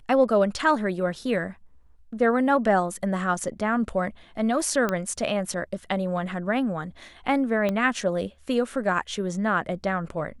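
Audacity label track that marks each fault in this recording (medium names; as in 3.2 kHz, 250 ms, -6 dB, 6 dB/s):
4.890000	4.890000	pop -12 dBFS
7.690000	7.690000	pop -14 dBFS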